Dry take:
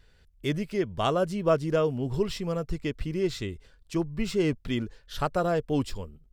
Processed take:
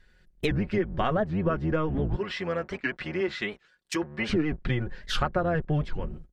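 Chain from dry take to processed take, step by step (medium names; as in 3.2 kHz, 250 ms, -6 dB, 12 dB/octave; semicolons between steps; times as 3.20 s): octave divider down 1 oct, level +1 dB; low-pass that closes with the level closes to 2.3 kHz, closed at -25 dBFS; 2.16–4.30 s: high-pass 1.1 kHz 6 dB/octave; gate -50 dBFS, range -13 dB; peaking EQ 1.7 kHz +8.5 dB 0.63 oct; comb 5.5 ms, depth 52%; compression 6:1, threshold -32 dBFS, peak gain reduction 15 dB; warped record 78 rpm, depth 250 cents; trim +8.5 dB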